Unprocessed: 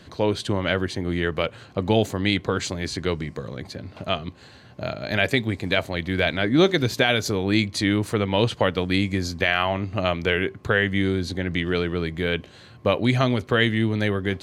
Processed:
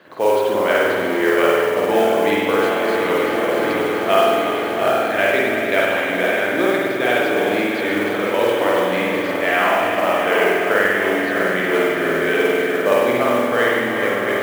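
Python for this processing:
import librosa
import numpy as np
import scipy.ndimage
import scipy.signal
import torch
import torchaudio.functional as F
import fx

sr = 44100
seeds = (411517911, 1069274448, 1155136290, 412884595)

p1 = fx.reverse_delay_fb(x, sr, ms=345, feedback_pct=82, wet_db=-9)
p2 = fx.rider(p1, sr, range_db=10, speed_s=0.5)
p3 = fx.bandpass_edges(p2, sr, low_hz=430.0, high_hz=2000.0)
p4 = p3 + fx.echo_single(p3, sr, ms=355, db=-10.0, dry=0)
p5 = fx.rev_spring(p4, sr, rt60_s=1.5, pass_ms=(49,), chirp_ms=75, drr_db=-5.0)
p6 = fx.mod_noise(p5, sr, seeds[0], snr_db=23)
y = F.gain(torch.from_numpy(p6), 2.5).numpy()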